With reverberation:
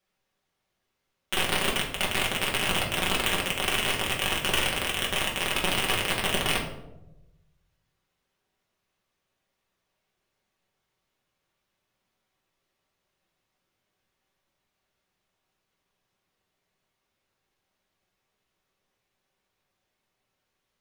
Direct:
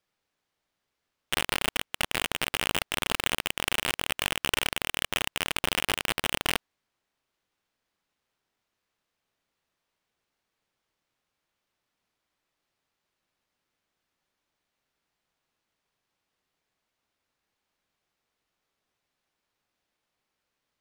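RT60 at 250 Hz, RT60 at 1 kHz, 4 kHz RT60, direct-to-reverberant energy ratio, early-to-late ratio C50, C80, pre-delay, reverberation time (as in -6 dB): 1.2 s, 0.80 s, 0.50 s, -3.0 dB, 6.5 dB, 9.5 dB, 5 ms, 0.95 s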